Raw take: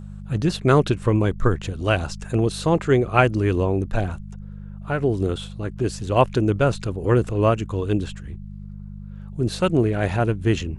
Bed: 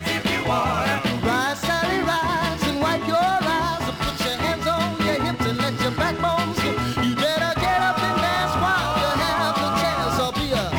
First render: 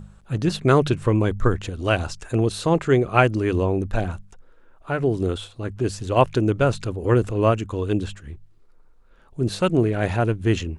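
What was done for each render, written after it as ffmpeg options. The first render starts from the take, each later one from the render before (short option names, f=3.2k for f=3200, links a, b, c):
-af "bandreject=f=50:t=h:w=4,bandreject=f=100:t=h:w=4,bandreject=f=150:t=h:w=4,bandreject=f=200:t=h:w=4"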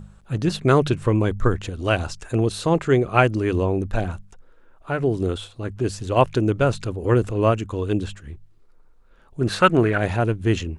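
-filter_complex "[0:a]asettb=1/sr,asplit=3[a][b][c];[a]atrim=end=9.414[d];[b]atrim=start=9.41:end=9.98,asetpts=PTS-STARTPTS,afade=t=in:d=0.004:c=qsin,afade=t=out:st=0.566:d=0.004:c=qsin,equalizer=f=1.5k:t=o:w=1.6:g=13.5[e];[c]atrim=start=9.976[f];[d][e]acrossfade=d=0.004:c1=hsin:c2=qsin[g];[g][f]acrossfade=d=0.004:c1=qsin:c2=hsin"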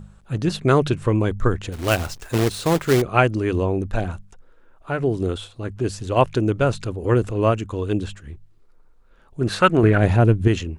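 -filter_complex "[0:a]asettb=1/sr,asplit=3[a][b][c];[a]atrim=end=1.724[d];[b]atrim=start=1.72:end=3.02,asetpts=PTS-STARTPTS,afade=t=in:d=0.004:c=qsin,afade=t=out:st=1.296:d=0.004:c=qsin,acrusher=bits=2:mode=log:mix=0:aa=0.000001[e];[c]atrim=start=3.016[f];[d][e]acrossfade=d=0.004:c1=hsin:c2=qsin[g];[g][f]acrossfade=d=0.004:c1=qsin:c2=hsin,asettb=1/sr,asplit=3[h][i][j];[h]atrim=end=9.834[k];[i]atrim=start=9.83:end=10.48,asetpts=PTS-STARTPTS,afade=t=in:d=0.004:c=qsin,afade=t=out:st=0.646:d=0.004:c=qsin,lowshelf=f=420:g=8.5[l];[j]atrim=start=10.476[m];[k][l]acrossfade=d=0.004:c1=hsin:c2=qsin[n];[n][m]acrossfade=d=0.004:c1=qsin:c2=hsin"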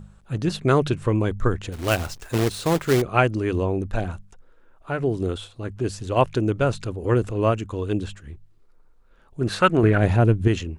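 -af "volume=-2dB"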